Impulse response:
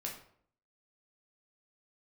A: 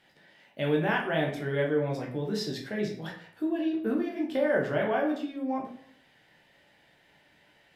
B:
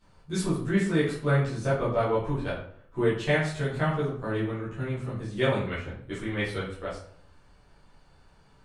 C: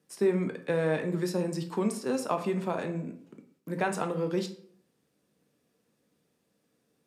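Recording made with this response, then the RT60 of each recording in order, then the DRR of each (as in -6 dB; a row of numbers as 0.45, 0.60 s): A; 0.60, 0.60, 0.60 s; -1.5, -11.5, 5.5 dB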